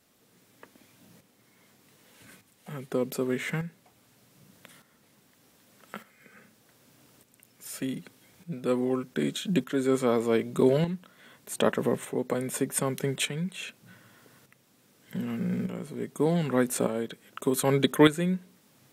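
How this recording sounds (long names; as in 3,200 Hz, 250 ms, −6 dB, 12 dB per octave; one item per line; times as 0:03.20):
tremolo saw up 0.83 Hz, depth 60%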